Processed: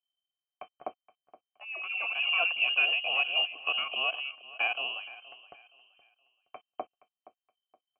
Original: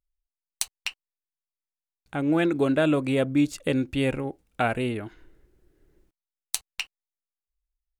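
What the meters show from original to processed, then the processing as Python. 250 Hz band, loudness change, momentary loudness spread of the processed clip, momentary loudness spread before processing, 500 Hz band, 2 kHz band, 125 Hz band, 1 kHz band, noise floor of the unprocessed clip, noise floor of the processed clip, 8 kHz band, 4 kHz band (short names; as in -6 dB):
under -30 dB, -1.5 dB, 20 LU, 13 LU, -15.5 dB, +5.5 dB, under -40 dB, -4.0 dB, under -85 dBFS, under -85 dBFS, under -40 dB, +7.5 dB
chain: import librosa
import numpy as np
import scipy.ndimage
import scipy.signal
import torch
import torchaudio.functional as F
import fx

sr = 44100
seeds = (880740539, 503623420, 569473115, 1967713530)

p1 = fx.echo_pitch(x, sr, ms=128, semitones=4, count=2, db_per_echo=-6.0)
p2 = fx.freq_invert(p1, sr, carrier_hz=3100)
p3 = fx.vowel_filter(p2, sr, vowel='a')
p4 = p3 + fx.echo_feedback(p3, sr, ms=471, feedback_pct=31, wet_db=-18.0, dry=0)
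y = p4 * 10.0 ** (6.0 / 20.0)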